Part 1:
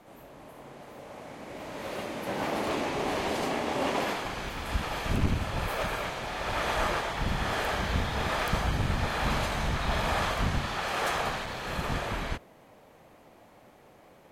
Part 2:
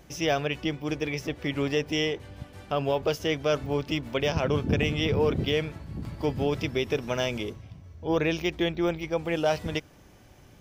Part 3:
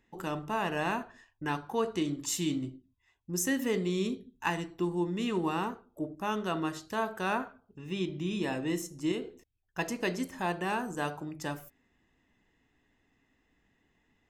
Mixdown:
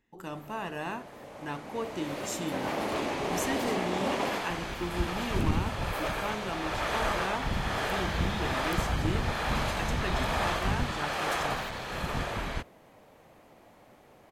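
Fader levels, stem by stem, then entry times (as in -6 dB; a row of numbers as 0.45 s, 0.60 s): -1.0 dB, mute, -4.5 dB; 0.25 s, mute, 0.00 s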